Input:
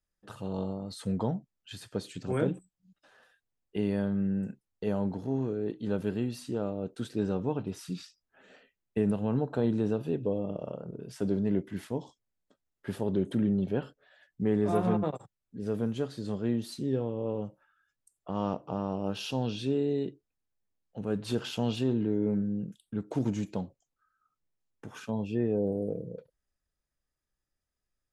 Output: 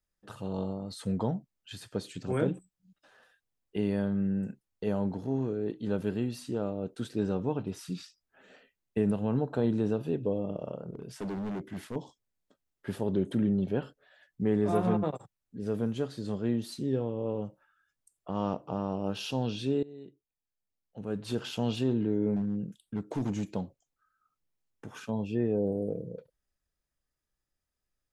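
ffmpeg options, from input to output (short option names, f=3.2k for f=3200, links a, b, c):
-filter_complex "[0:a]asettb=1/sr,asplit=3[a][b][c];[a]atrim=end=10.904[d];[b]atrim=start=10.9:end=11.96,asetpts=PTS-STARTPTS,afade=t=in:d=0.004:c=qsin,afade=t=out:st=1.056:d=0.004:c=qsin,asoftclip=type=hard:threshold=-32.5dB[e];[c]atrim=start=11.956[f];[d][e]acrossfade=d=0.004:c1=hsin:c2=qsin[g];[g][f]acrossfade=d=0.004:c1=qsin:c2=hsin,asettb=1/sr,asplit=3[h][i][j];[h]atrim=end=22.364[k];[i]atrim=start=22.36:end=23.51,asetpts=PTS-STARTPTS,afade=t=in:d=0.004:c=qsin,afade=t=out:st=1.146:d=0.004:c=qsin,volume=26dB,asoftclip=hard,volume=-26dB[l];[j]atrim=start=23.506[m];[k][l]acrossfade=d=0.004:c1=hsin:c2=qsin[n];[n][m]acrossfade=d=0.004:c1=qsin:c2=hsin,asplit=2[o][p];[o]atrim=end=19.83,asetpts=PTS-STARTPTS,afade=t=out:st=19.826:d=0.004:c=hsin:silence=0.0944061[q];[p]atrim=start=19.83,asetpts=PTS-STARTPTS,afade=t=in:d=1.92:silence=0.0944061[r];[q][r]concat=n=2:v=0:a=1"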